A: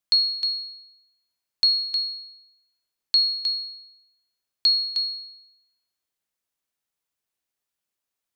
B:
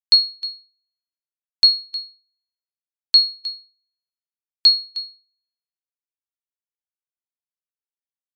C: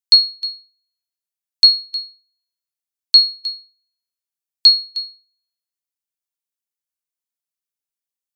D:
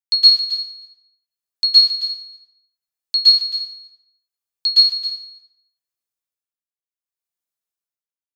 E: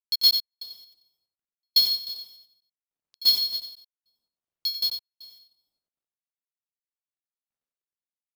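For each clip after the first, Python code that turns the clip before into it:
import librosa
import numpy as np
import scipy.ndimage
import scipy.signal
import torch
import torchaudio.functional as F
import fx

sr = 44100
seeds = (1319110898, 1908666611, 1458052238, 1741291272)

y1 = fx.upward_expand(x, sr, threshold_db=-41.0, expansion=2.5)
y1 = F.gain(torch.from_numpy(y1), 8.0).numpy()
y2 = fx.high_shelf(y1, sr, hz=3400.0, db=10.5)
y2 = F.gain(torch.from_numpy(y2), -3.0).numpy()
y3 = y2 * (1.0 - 0.87 / 2.0 + 0.87 / 2.0 * np.cos(2.0 * np.pi * 0.68 * (np.arange(len(y2)) / sr)))
y3 = y3 + 10.0 ** (-11.0 / 20.0) * np.pad(y3, (int(269 * sr / 1000.0), 0))[:len(y3)]
y3 = fx.rev_plate(y3, sr, seeds[0], rt60_s=0.87, hf_ratio=0.7, predelay_ms=105, drr_db=-9.5)
y3 = F.gain(torch.from_numpy(y3), -8.0).numpy()
y4 = scipy.ndimage.median_filter(y3, 25, mode='constant')
y4 = fx.step_gate(y4, sr, bpm=196, pattern='xx.x....xxx.xxx', floor_db=-60.0, edge_ms=4.5)
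y4 = y4 + 10.0 ** (-8.0 / 20.0) * np.pad(y4, (int(92 * sr / 1000.0), 0))[:len(y4)]
y4 = F.gain(torch.from_numpy(y4), 3.5).numpy()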